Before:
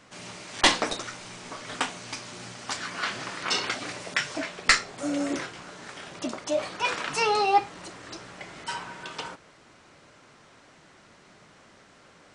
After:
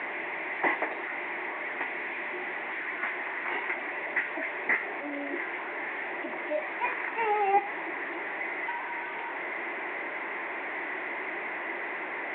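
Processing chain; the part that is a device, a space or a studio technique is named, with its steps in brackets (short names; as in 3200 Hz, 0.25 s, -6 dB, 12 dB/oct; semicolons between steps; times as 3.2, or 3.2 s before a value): 1.78–3 dynamic EQ 900 Hz, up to -6 dB, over -45 dBFS, Q 0.77; digital answering machine (BPF 360–3200 Hz; delta modulation 16 kbps, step -27.5 dBFS; speaker cabinet 350–3200 Hz, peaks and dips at 350 Hz +8 dB, 510 Hz -6 dB, 910 Hz +3 dB, 1300 Hz -9 dB, 2000 Hz +10 dB, 3000 Hz -9 dB); gain -2 dB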